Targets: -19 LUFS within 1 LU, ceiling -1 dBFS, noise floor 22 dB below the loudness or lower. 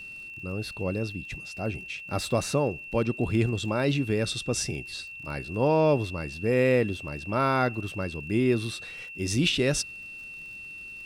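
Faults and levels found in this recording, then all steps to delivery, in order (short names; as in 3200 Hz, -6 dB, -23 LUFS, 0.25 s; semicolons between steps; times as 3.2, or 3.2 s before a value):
ticks 38/s; steady tone 2700 Hz; tone level -39 dBFS; loudness -27.5 LUFS; peak -12.0 dBFS; loudness target -19.0 LUFS
-> de-click; notch 2700 Hz, Q 30; gain +8.5 dB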